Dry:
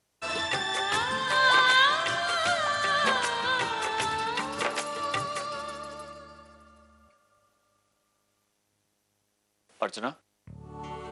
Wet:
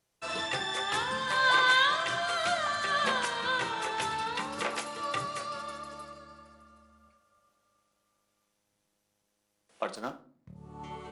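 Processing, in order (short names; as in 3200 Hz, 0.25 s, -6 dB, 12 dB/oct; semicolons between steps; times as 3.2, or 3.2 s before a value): 9.95–10.56 median filter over 15 samples; shoebox room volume 380 m³, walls furnished, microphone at 0.77 m; gain -4 dB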